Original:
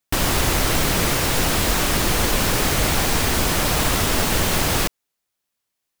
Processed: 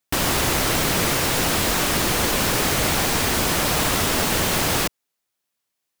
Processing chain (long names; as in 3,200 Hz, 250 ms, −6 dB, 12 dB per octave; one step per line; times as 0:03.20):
low-shelf EQ 61 Hz −11.5 dB